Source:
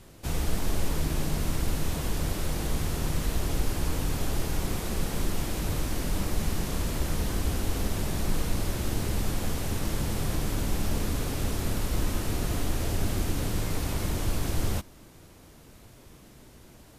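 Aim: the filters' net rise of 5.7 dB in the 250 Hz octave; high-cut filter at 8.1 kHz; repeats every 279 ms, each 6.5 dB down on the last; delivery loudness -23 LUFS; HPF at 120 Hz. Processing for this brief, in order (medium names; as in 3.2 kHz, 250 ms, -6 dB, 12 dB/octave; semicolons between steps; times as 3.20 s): high-pass 120 Hz; low-pass 8.1 kHz; peaking EQ 250 Hz +8 dB; feedback delay 279 ms, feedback 47%, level -6.5 dB; trim +7 dB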